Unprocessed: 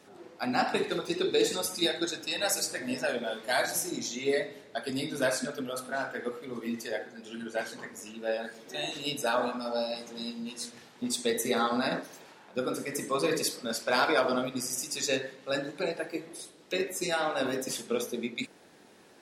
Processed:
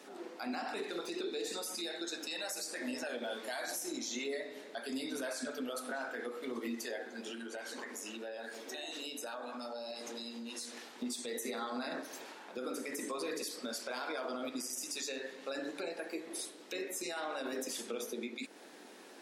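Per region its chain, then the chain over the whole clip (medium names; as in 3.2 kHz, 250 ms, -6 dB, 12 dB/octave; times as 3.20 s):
7.30–10.90 s: high-pass 210 Hz + compression 10:1, threshold -42 dBFS
whole clip: Chebyshev high-pass 250 Hz, order 3; compression 3:1, threshold -39 dBFS; peak limiter -33.5 dBFS; trim +3.5 dB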